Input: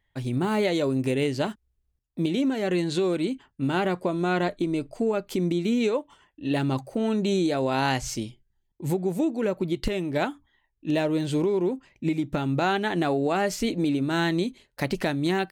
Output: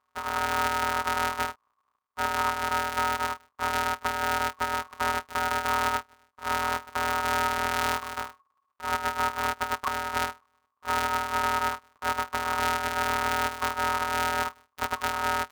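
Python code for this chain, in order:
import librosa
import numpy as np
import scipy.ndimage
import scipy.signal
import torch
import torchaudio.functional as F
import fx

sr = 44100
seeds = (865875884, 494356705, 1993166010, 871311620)

y = np.r_[np.sort(x[:len(x) // 256 * 256].reshape(-1, 256), axis=1).ravel(), x[len(x) // 256 * 256:]]
y = y * np.sin(2.0 * np.pi * 1100.0 * np.arange(len(y)) / sr)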